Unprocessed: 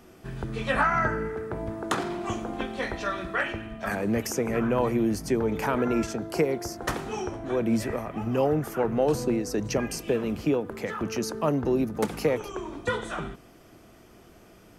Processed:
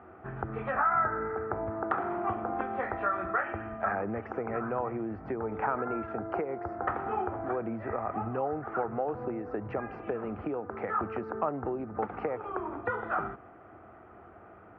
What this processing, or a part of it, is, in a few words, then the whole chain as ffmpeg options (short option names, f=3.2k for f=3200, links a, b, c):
bass amplifier: -af "acompressor=threshold=-30dB:ratio=6,bass=f=250:g=-1,treble=f=4k:g=-10,highpass=79,equalizer=f=83:t=q:w=4:g=7,equalizer=f=160:t=q:w=4:g=-8,equalizer=f=250:t=q:w=4:g=-4,equalizer=f=770:t=q:w=4:g=9,equalizer=f=1.3k:t=q:w=4:g=9,lowpass=f=2k:w=0.5412,lowpass=f=2k:w=1.3066"